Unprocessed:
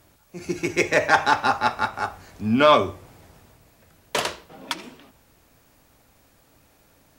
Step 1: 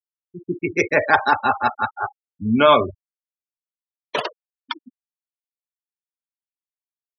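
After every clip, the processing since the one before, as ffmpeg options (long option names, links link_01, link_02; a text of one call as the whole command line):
ffmpeg -i in.wav -af "afftfilt=real='re*gte(hypot(re,im),0.0891)':imag='im*gte(hypot(re,im),0.0891)':win_size=1024:overlap=0.75,volume=2dB" out.wav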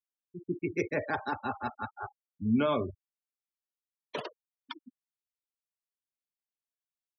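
ffmpeg -i in.wav -filter_complex "[0:a]acrossover=split=420[link_01][link_02];[link_02]acompressor=threshold=-45dB:ratio=1.5[link_03];[link_01][link_03]amix=inputs=2:normalize=0,volume=-7dB" out.wav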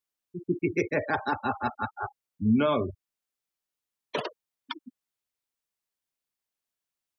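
ffmpeg -i in.wav -af "alimiter=limit=-21dB:level=0:latency=1:release=483,volume=6dB" out.wav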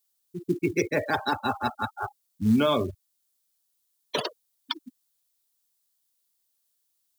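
ffmpeg -i in.wav -af "aexciter=amount=2.8:drive=6.1:freq=3400,acrusher=bits=7:mode=log:mix=0:aa=0.000001,volume=1.5dB" out.wav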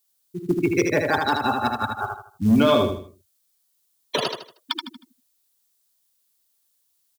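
ffmpeg -i in.wav -filter_complex "[0:a]asoftclip=type=hard:threshold=-16dB,asplit=2[link_01][link_02];[link_02]aecho=0:1:78|156|234|312:0.596|0.203|0.0689|0.0234[link_03];[link_01][link_03]amix=inputs=2:normalize=0,volume=4dB" out.wav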